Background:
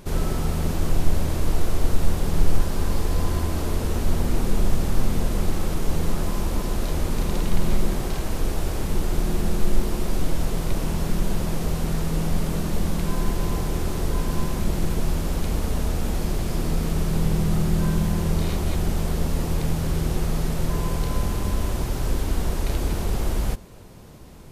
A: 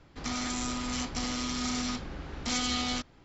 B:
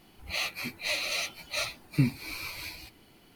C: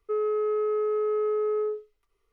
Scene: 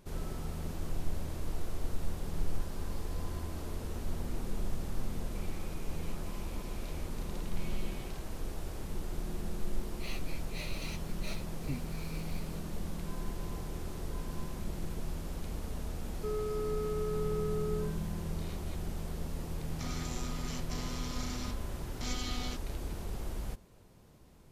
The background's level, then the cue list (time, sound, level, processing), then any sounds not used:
background −14.5 dB
0:05.10: mix in A −13.5 dB + four-pole ladder band-pass 2,600 Hz, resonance 75%
0:09.70: mix in B −14 dB
0:16.14: mix in C −10 dB
0:19.55: mix in A −9.5 dB

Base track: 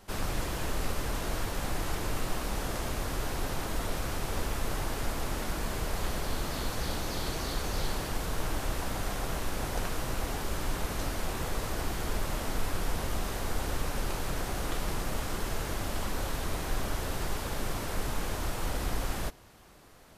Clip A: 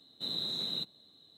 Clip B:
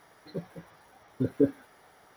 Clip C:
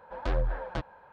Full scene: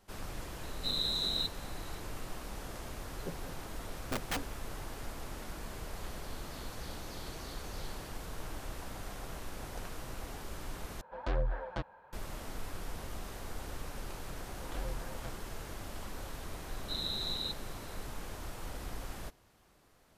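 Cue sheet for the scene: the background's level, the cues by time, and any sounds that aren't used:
base track −10 dB
0:00.63: mix in A + parametric band 9,100 Hz +6.5 dB 1.4 octaves
0:02.91: mix in B −6.5 dB + wrap-around overflow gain 22 dB
0:11.01: overwrite with C −4 dB
0:14.49: mix in C −12.5 dB
0:16.68: mix in A −2 dB + Butterworth low-pass 8,800 Hz

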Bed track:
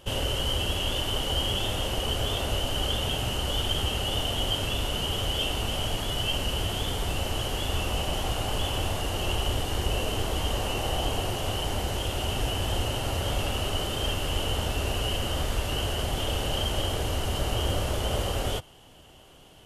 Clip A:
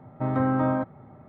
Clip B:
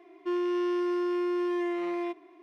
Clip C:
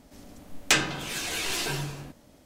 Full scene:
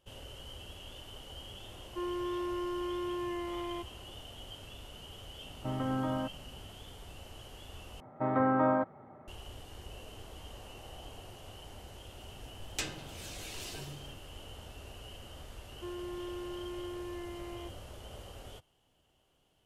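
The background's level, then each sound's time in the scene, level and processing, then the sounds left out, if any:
bed track −20 dB
0:01.70: mix in B −8 dB + parametric band 960 Hz +14.5 dB 0.21 octaves
0:05.44: mix in A −9 dB + brickwall limiter −15.5 dBFS
0:08.00: overwrite with A −0.5 dB + bass and treble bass −11 dB, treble −14 dB
0:12.08: mix in C −13 dB + parametric band 1,400 Hz −6.5 dB 1.6 octaves
0:15.56: mix in B −13 dB

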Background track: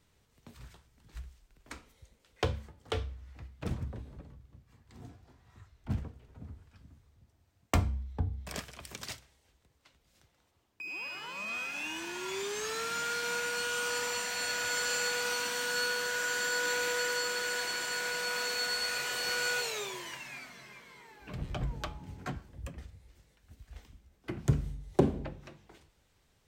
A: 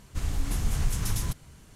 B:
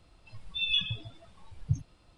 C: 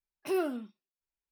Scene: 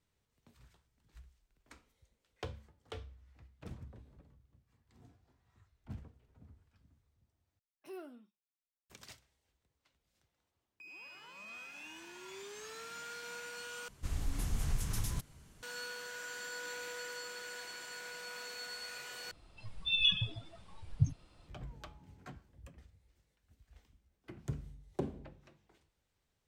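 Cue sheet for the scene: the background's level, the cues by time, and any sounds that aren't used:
background track −12 dB
0:07.59: overwrite with C −17.5 dB
0:13.88: overwrite with A −7.5 dB
0:19.31: overwrite with B −0.5 dB

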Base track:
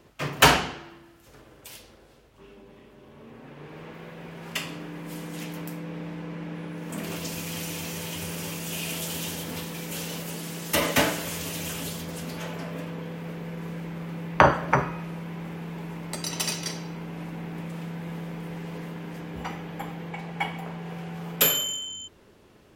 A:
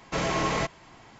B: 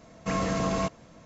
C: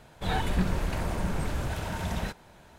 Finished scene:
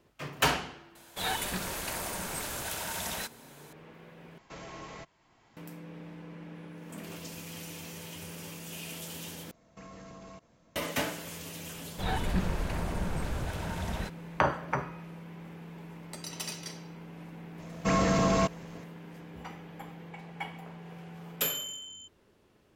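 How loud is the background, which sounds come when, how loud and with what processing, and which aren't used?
base track −9.5 dB
0:00.95: mix in C −2 dB + RIAA equalisation recording
0:04.38: overwrite with A −18 dB + multiband upward and downward compressor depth 40%
0:09.51: overwrite with B −12 dB + downward compressor 5 to 1, threshold −33 dBFS
0:11.77: mix in C −3 dB
0:17.59: mix in B −0.5 dB + leveller curve on the samples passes 1

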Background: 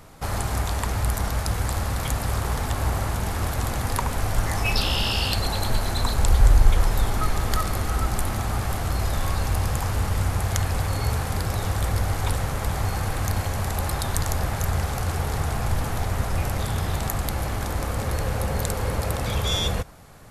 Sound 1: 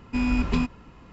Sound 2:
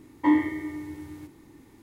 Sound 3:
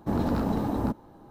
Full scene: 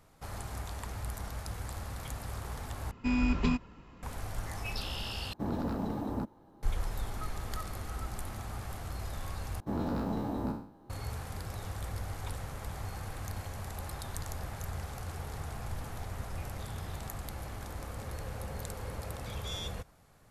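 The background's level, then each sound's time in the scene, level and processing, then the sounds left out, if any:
background −14.5 dB
0:02.91: overwrite with 1 −4.5 dB
0:05.33: overwrite with 3 −7.5 dB
0:09.60: overwrite with 3 −8.5 dB + peak hold with a decay on every bin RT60 0.53 s
not used: 2

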